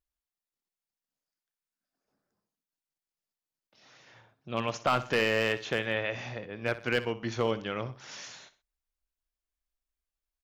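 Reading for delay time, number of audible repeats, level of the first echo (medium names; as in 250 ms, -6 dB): 62 ms, 2, -15.0 dB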